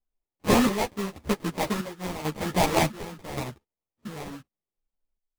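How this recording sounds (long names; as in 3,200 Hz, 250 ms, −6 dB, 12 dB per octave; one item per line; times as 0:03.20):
aliases and images of a low sample rate 1,500 Hz, jitter 20%
chopped level 0.89 Hz, depth 65%, duty 60%
a shimmering, thickened sound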